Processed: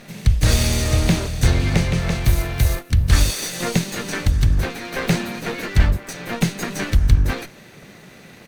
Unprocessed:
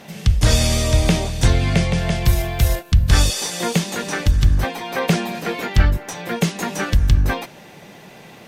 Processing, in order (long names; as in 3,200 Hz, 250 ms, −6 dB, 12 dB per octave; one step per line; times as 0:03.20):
lower of the sound and its delayed copy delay 0.47 ms
pitch-shifted copies added −5 semitones −9 dB, +5 semitones −16 dB
level −1 dB